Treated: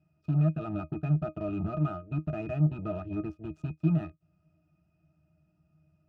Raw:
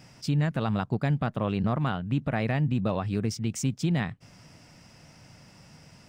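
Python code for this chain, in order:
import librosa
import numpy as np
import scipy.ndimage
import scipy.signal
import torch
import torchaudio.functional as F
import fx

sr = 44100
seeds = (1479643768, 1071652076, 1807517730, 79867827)

y = fx.cheby_harmonics(x, sr, harmonics=(6, 7), levels_db=(-34, -15), full_scale_db=-17.5)
y = fx.octave_resonator(y, sr, note='D#', decay_s=0.11)
y = F.gain(torch.from_numpy(y), 3.5).numpy()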